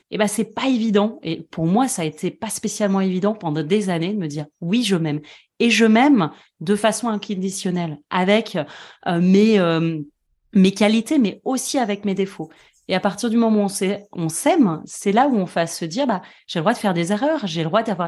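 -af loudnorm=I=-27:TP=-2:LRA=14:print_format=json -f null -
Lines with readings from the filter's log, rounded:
"input_i" : "-20.0",
"input_tp" : "-2.5",
"input_lra" : "2.7",
"input_thresh" : "-30.2",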